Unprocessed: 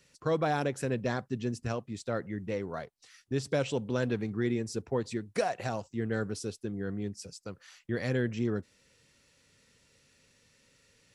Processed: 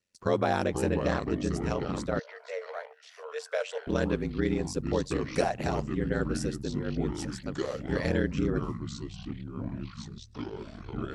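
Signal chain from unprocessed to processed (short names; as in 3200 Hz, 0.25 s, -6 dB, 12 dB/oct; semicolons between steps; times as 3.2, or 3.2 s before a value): gate with hold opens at -52 dBFS; ring modulator 45 Hz; echoes that change speed 0.4 s, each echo -5 st, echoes 3, each echo -6 dB; 2.19–3.87 rippled Chebyshev high-pass 440 Hz, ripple 6 dB; gain +5 dB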